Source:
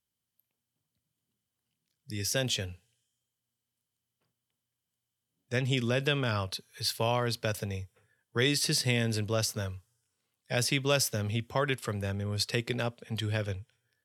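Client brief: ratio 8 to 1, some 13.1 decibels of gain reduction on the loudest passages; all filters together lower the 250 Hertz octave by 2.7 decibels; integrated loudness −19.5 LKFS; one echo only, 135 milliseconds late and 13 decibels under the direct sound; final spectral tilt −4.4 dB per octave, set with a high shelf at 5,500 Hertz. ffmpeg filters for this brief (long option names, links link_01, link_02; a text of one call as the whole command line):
ffmpeg -i in.wav -af "equalizer=frequency=250:width_type=o:gain=-3.5,highshelf=frequency=5500:gain=3.5,acompressor=threshold=-37dB:ratio=8,aecho=1:1:135:0.224,volume=21.5dB" out.wav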